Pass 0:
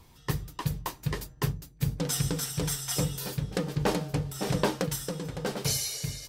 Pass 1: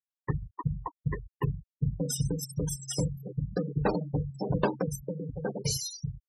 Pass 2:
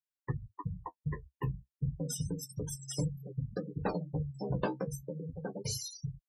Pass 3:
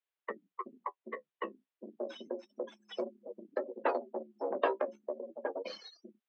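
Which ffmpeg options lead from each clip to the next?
-af "afftfilt=real='re*gte(hypot(re,im),0.0501)':imag='im*gte(hypot(re,im),0.0501)':win_size=1024:overlap=0.75"
-af "flanger=delay=6.1:depth=10:regen=30:speed=0.32:shape=triangular,volume=0.794"
-af "aeval=exprs='0.126*(cos(1*acos(clip(val(0)/0.126,-1,1)))-cos(1*PI/2))+0.00794*(cos(6*acos(clip(val(0)/0.126,-1,1)))-cos(6*PI/2))':c=same,highpass=f=290:t=q:w=0.5412,highpass=f=290:t=q:w=1.307,lowpass=f=3500:t=q:w=0.5176,lowpass=f=3500:t=q:w=0.7071,lowpass=f=3500:t=q:w=1.932,afreqshift=74,volume=1.68"

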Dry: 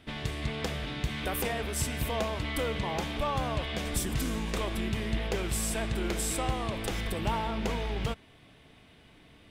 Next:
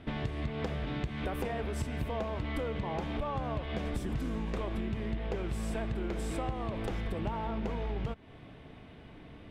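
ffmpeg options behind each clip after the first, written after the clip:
-af "lowpass=f=1100:p=1,acompressor=threshold=0.0112:ratio=6,volume=2.37"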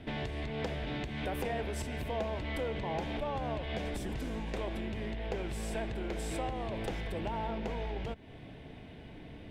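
-filter_complex "[0:a]equalizer=f=1200:w=3.6:g=-10,acrossover=split=460[s0][s1];[s0]asoftclip=type=tanh:threshold=0.0126[s2];[s2][s1]amix=inputs=2:normalize=0,volume=1.33"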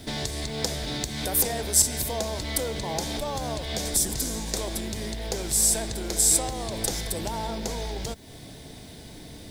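-af "aexciter=amount=11.9:drive=6.4:freq=4200,volume=1.68"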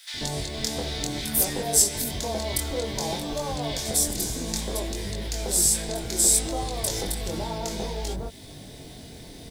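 -filter_complex "[0:a]flanger=delay=20:depth=4.7:speed=0.6,acrossover=split=1400[s0][s1];[s0]adelay=140[s2];[s2][s1]amix=inputs=2:normalize=0,volume=1.58"

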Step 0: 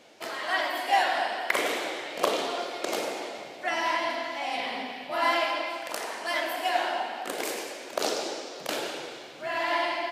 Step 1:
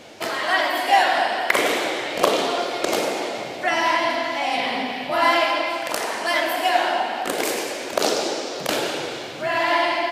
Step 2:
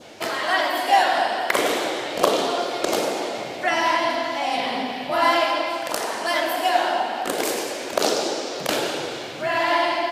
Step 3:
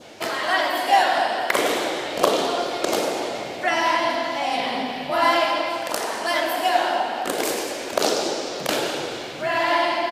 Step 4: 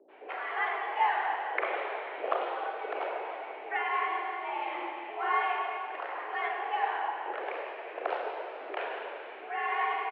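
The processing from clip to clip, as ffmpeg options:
-filter_complex "[0:a]equalizer=f=63:t=o:w=2.2:g=12,asplit=2[s0][s1];[s1]acompressor=threshold=0.0141:ratio=6,volume=0.891[s2];[s0][s2]amix=inputs=2:normalize=0,volume=1.88"
-af "adynamicequalizer=threshold=0.0158:dfrequency=2200:dqfactor=1.9:tfrequency=2200:tqfactor=1.9:attack=5:release=100:ratio=0.375:range=2.5:mode=cutabove:tftype=bell"
-filter_complex "[0:a]asplit=3[s0][s1][s2];[s1]adelay=211,afreqshift=-110,volume=0.0944[s3];[s2]adelay=422,afreqshift=-220,volume=0.0292[s4];[s0][s3][s4]amix=inputs=3:normalize=0"
-filter_complex "[0:a]acrossover=split=460[s0][s1];[s1]adelay=80[s2];[s0][s2]amix=inputs=2:normalize=0,aeval=exprs='val(0)+0.00891*(sin(2*PI*60*n/s)+sin(2*PI*2*60*n/s)/2+sin(2*PI*3*60*n/s)/3+sin(2*PI*4*60*n/s)/4+sin(2*PI*5*60*n/s)/5)':c=same,highpass=f=270:t=q:w=0.5412,highpass=f=270:t=q:w=1.307,lowpass=f=2500:t=q:w=0.5176,lowpass=f=2500:t=q:w=0.7071,lowpass=f=2500:t=q:w=1.932,afreqshift=89,volume=0.355"

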